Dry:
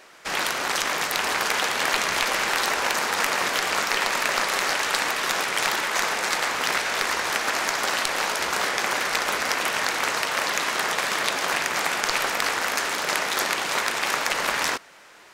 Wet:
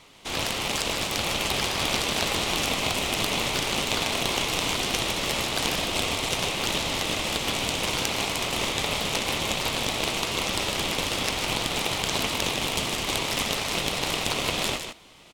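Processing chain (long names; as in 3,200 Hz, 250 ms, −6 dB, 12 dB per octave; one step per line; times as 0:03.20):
single-tap delay 154 ms −7.5 dB
ring modulation 1,600 Hz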